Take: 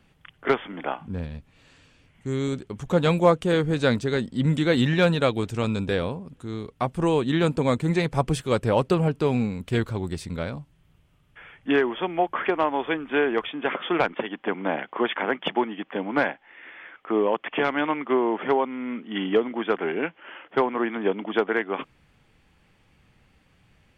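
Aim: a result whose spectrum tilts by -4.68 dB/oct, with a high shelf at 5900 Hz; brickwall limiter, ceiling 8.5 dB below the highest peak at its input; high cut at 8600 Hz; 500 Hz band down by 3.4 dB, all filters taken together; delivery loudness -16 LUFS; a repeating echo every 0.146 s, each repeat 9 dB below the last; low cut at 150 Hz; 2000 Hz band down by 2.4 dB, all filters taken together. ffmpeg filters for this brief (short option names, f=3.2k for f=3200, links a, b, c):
-af "highpass=150,lowpass=8.6k,equalizer=f=500:t=o:g=-4,equalizer=f=2k:t=o:g=-3.5,highshelf=f=5.9k:g=5.5,alimiter=limit=-16dB:level=0:latency=1,aecho=1:1:146|292|438|584:0.355|0.124|0.0435|0.0152,volume=12.5dB"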